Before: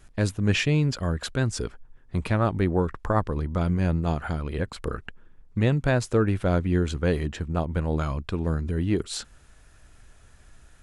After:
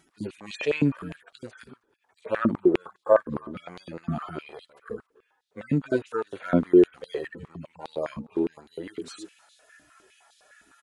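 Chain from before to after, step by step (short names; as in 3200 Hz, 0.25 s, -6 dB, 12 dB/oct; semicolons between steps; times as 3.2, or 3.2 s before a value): median-filter separation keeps harmonic; outdoor echo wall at 54 m, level -24 dB; stepped high-pass 9.8 Hz 240–3800 Hz; gain +2.5 dB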